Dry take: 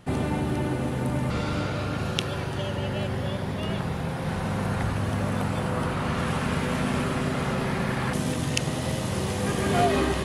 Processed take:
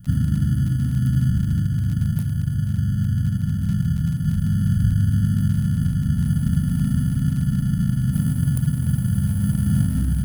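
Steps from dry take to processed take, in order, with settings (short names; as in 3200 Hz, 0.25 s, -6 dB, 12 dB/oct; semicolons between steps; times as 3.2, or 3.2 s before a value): median filter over 3 samples; inverse Chebyshev band-stop 380–6100 Hz, stop band 40 dB; in parallel at -9.5 dB: sample-and-hold 28×; on the sum: crackle 28/s -37 dBFS; gain +8 dB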